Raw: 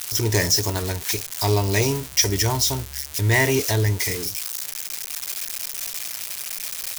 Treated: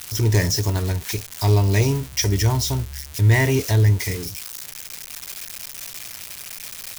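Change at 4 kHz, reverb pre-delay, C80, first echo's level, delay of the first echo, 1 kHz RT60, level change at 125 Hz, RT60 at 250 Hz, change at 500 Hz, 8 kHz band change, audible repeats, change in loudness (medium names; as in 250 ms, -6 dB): -4.0 dB, no reverb, no reverb, no echo, no echo, no reverb, +5.5 dB, no reverb, -1.0 dB, -4.5 dB, no echo, +1.0 dB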